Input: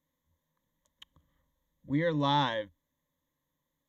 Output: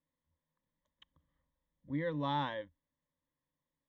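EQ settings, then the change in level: low-pass 3.2 kHz 12 dB/octave; -7.0 dB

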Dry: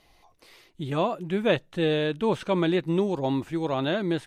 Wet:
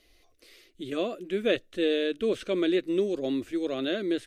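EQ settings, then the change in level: static phaser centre 370 Hz, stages 4; 0.0 dB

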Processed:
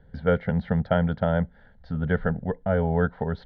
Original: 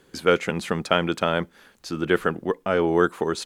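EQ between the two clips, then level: distance through air 360 m; RIAA curve playback; static phaser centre 1.7 kHz, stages 8; 0.0 dB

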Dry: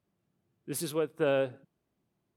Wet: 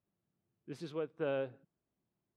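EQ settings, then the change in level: distance through air 160 m; -7.5 dB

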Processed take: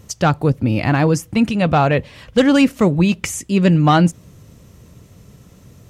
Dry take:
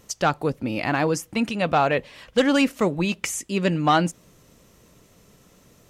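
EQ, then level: peaking EQ 94 Hz +14.5 dB 2.1 oct; +3.0 dB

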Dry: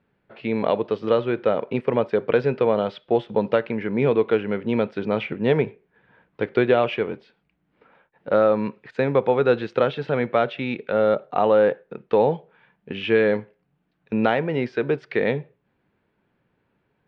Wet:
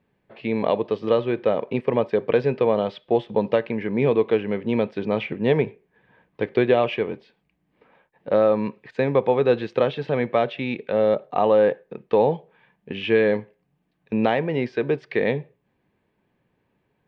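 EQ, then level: band-stop 1.4 kHz, Q 5.4; 0.0 dB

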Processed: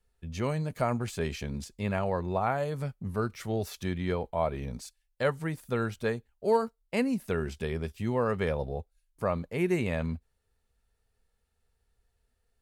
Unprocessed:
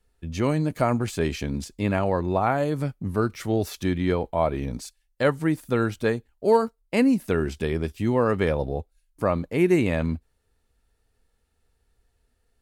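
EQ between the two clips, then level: peaking EQ 300 Hz -14 dB 0.23 oct; -5.5 dB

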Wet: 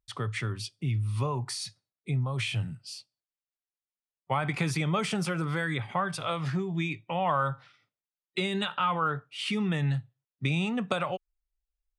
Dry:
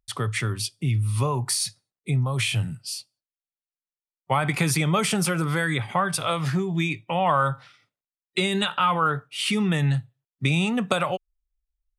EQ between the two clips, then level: distance through air 64 m; -5.5 dB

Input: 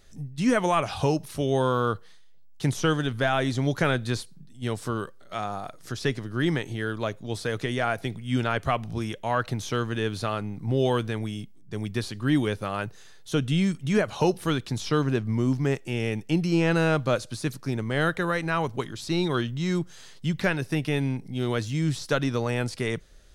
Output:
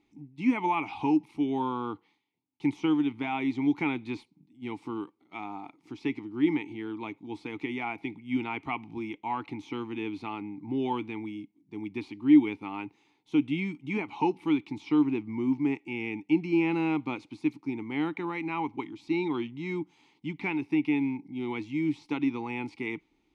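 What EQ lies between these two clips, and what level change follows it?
dynamic bell 2 kHz, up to +6 dB, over -42 dBFS, Q 0.72; vowel filter u; +6.5 dB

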